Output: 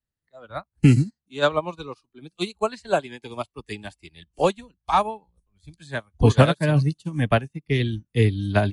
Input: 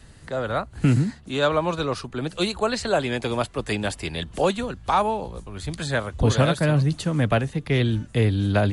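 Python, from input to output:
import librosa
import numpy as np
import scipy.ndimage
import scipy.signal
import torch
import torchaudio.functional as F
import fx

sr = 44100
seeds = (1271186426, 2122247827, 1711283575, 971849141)

y = fx.noise_reduce_blind(x, sr, reduce_db=13)
y = fx.upward_expand(y, sr, threshold_db=-38.0, expansion=2.5)
y = y * 10.0 ** (6.0 / 20.0)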